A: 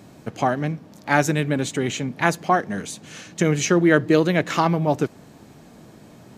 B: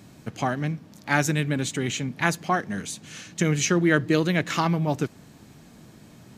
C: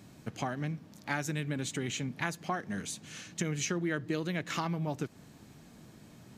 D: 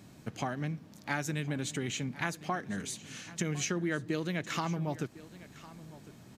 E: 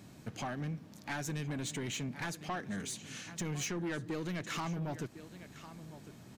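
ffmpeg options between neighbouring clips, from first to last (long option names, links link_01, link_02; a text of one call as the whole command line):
ffmpeg -i in.wav -af "equalizer=frequency=580:width_type=o:width=2.2:gain=-7" out.wav
ffmpeg -i in.wav -af "acompressor=threshold=-26dB:ratio=3,volume=-5dB" out.wav
ffmpeg -i in.wav -af "aecho=1:1:1055:0.126" out.wav
ffmpeg -i in.wav -af "asoftclip=type=tanh:threshold=-32dB" out.wav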